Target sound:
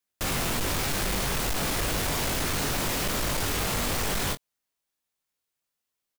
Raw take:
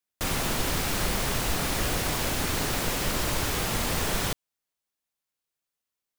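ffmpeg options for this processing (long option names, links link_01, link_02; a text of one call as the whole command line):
ffmpeg -i in.wav -af "aecho=1:1:21|43:0.501|0.133,volume=26dB,asoftclip=hard,volume=-26dB,volume=1.5dB" out.wav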